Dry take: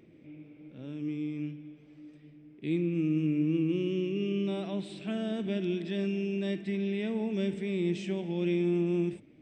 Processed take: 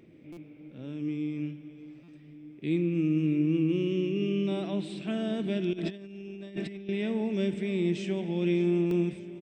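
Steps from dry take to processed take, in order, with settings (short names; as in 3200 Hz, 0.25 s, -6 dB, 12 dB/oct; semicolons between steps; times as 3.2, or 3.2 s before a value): on a send: feedback echo 0.597 s, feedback 59%, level -17 dB; 5.73–6.89 on the sum: negative-ratio compressor -38 dBFS, ratio -0.5; stuck buffer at 0.32/2.03/8.86, samples 256, times 8; gain +2 dB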